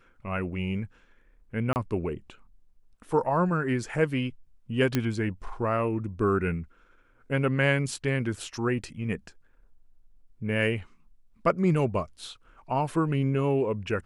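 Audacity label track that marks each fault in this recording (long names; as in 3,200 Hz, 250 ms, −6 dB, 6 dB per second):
1.730000	1.760000	drop-out 29 ms
4.950000	4.950000	click −11 dBFS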